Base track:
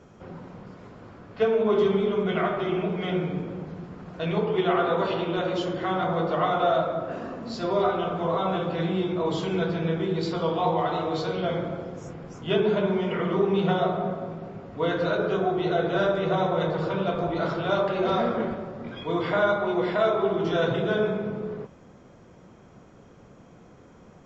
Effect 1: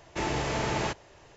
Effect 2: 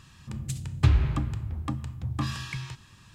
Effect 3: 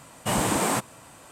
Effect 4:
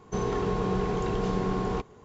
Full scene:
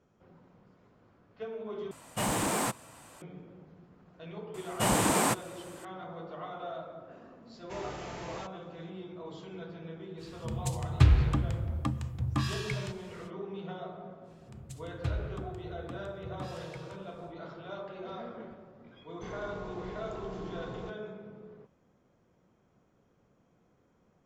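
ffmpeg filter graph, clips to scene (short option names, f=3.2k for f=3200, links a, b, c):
-filter_complex "[3:a]asplit=2[a][b];[2:a]asplit=2[c][d];[0:a]volume=-17.5dB[e];[a]aeval=exprs='0.266*sin(PI/2*1.78*val(0)/0.266)':c=same[f];[e]asplit=2[g][h];[g]atrim=end=1.914[i];[f]atrim=end=1.31,asetpts=PTS-STARTPTS,volume=-13dB[j];[h]atrim=start=3.216[k];[b]atrim=end=1.31,asetpts=PTS-STARTPTS,volume=-2dB,afade=t=in:d=0.004:c=hsin,afade=t=out:st=1.306:d=0.004:c=hsin,adelay=4540[l];[1:a]atrim=end=1.36,asetpts=PTS-STARTPTS,volume=-13.5dB,afade=t=in:d=0.004:c=hsin,afade=t=out:st=1.356:d=0.004:c=hsin,adelay=332514S[m];[c]atrim=end=3.14,asetpts=PTS-STARTPTS,volume=-0.5dB,afade=t=in:d=0.05,afade=t=out:st=3.09:d=0.05,adelay=10170[n];[d]atrim=end=3.14,asetpts=PTS-STARTPTS,volume=-13dB,afade=t=in:d=0.1,afade=t=out:st=3.04:d=0.1,adelay=14210[o];[4:a]atrim=end=2.04,asetpts=PTS-STARTPTS,volume=-14.5dB,afade=t=in:d=0.004:c=hsin,afade=t=out:st=2.036:d=0.004:c=hsin,adelay=19090[p];[i][j]acrossfade=d=0.004:c1=hsin:c2=hsin[q];[q][k]acrossfade=d=0.004:c1=hsin:c2=hsin[r];[r][l][m][n][o][p]amix=inputs=6:normalize=0"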